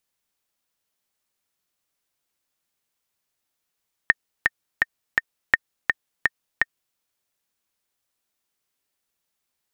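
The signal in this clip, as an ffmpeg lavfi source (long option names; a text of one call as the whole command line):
ffmpeg -f lavfi -i "aevalsrc='pow(10,(-1-3.5*gte(mod(t,4*60/167),60/167))/20)*sin(2*PI*1830*mod(t,60/167))*exp(-6.91*mod(t,60/167)/0.03)':duration=2.87:sample_rate=44100" out.wav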